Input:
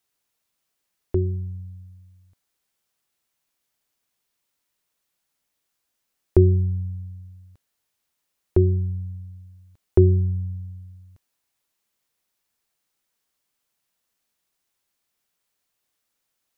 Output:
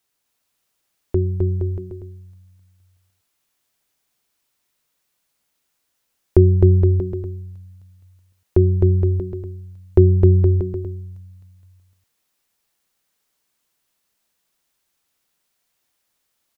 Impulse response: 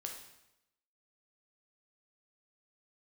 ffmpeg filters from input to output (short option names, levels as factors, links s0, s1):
-af "aecho=1:1:260|468|634.4|767.5|874:0.631|0.398|0.251|0.158|0.1,volume=1.41"